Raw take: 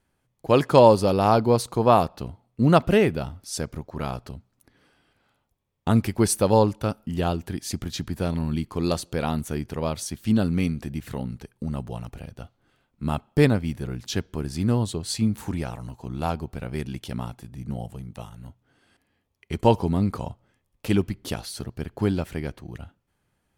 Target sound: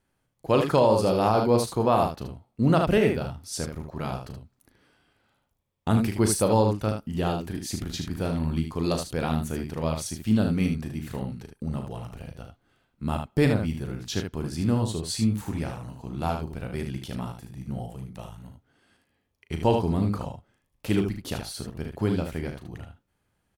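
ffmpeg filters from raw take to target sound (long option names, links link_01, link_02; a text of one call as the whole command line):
ffmpeg -i in.wav -af "aecho=1:1:37|76:0.398|0.473,alimiter=limit=-8dB:level=0:latency=1:release=75,volume=-2.5dB" out.wav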